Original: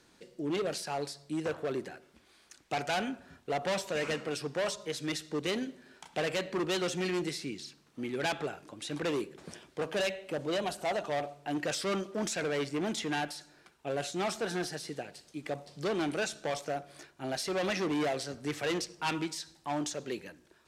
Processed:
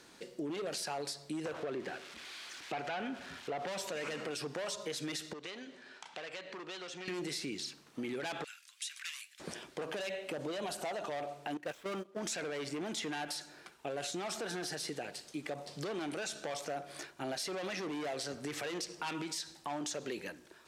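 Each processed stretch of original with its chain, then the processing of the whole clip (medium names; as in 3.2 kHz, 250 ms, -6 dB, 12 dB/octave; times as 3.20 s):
1.54–3.67 s: zero-crossing glitches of -34.5 dBFS + low-pass 3 kHz
5.33–7.08 s: low-pass 5.7 kHz + bass shelf 470 Hz -10.5 dB + compression 3:1, threshold -50 dBFS
8.44–9.40 s: Bessel high-pass 2.8 kHz, order 6 + dynamic bell 4 kHz, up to -5 dB, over -56 dBFS, Q 1.7
11.57–12.19 s: median filter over 9 samples + gate -34 dBFS, range -17 dB
whole clip: peak limiter -31.5 dBFS; bass shelf 160 Hz -9.5 dB; compression 2:1, threshold -44 dBFS; trim +6 dB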